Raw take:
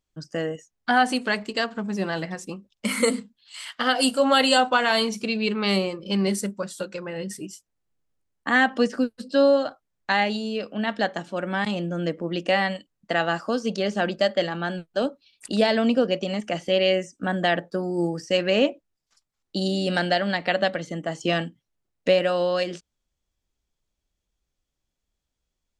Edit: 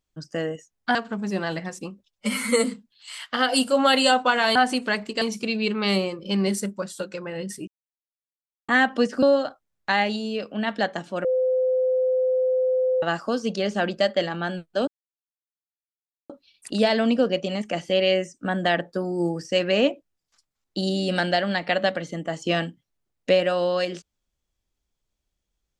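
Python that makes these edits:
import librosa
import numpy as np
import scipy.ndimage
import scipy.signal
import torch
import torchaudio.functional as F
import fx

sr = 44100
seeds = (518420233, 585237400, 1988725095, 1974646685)

y = fx.edit(x, sr, fx.move(start_s=0.95, length_s=0.66, to_s=5.02),
    fx.stretch_span(start_s=2.71, length_s=0.39, factor=1.5),
    fx.silence(start_s=7.48, length_s=1.01),
    fx.cut(start_s=9.03, length_s=0.4),
    fx.bleep(start_s=11.45, length_s=1.78, hz=513.0, db=-18.5),
    fx.insert_silence(at_s=15.08, length_s=1.42), tone=tone)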